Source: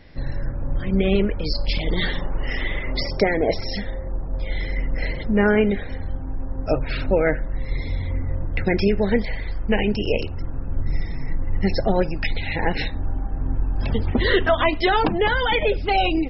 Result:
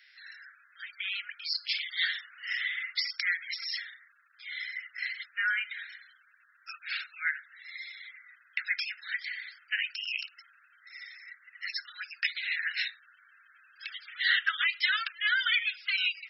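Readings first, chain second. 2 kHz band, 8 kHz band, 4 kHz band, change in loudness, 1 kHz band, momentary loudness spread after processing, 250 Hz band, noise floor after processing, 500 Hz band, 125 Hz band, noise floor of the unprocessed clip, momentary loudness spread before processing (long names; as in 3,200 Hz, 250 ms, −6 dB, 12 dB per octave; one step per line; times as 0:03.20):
−2.0 dB, can't be measured, −2.0 dB, −7.5 dB, −18.5 dB, 19 LU, below −40 dB, −64 dBFS, below −40 dB, below −40 dB, −29 dBFS, 11 LU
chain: Butterworth high-pass 1,400 Hz 72 dB per octave
level −2 dB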